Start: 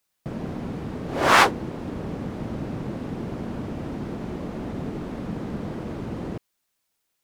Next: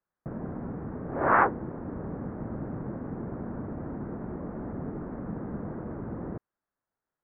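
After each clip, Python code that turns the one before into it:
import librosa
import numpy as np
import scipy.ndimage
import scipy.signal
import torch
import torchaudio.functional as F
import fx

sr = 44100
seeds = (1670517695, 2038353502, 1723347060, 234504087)

y = scipy.signal.sosfilt(scipy.signal.butter(6, 1700.0, 'lowpass', fs=sr, output='sos'), x)
y = y * librosa.db_to_amplitude(-4.5)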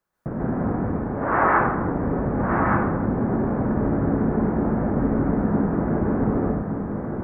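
y = fx.rider(x, sr, range_db=5, speed_s=0.5)
y = y + 10.0 ** (-4.5 / 20.0) * np.pad(y, (int(1169 * sr / 1000.0), 0))[:len(y)]
y = fx.rev_plate(y, sr, seeds[0], rt60_s=0.92, hf_ratio=0.75, predelay_ms=110, drr_db=-5.0)
y = y * librosa.db_to_amplitude(3.0)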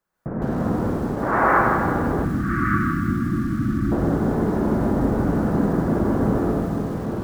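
y = fx.rev_schroeder(x, sr, rt60_s=1.8, comb_ms=33, drr_db=3.0)
y = fx.spec_erase(y, sr, start_s=2.25, length_s=1.67, low_hz=360.0, high_hz=1100.0)
y = fx.echo_crushed(y, sr, ms=160, feedback_pct=35, bits=6, wet_db=-12)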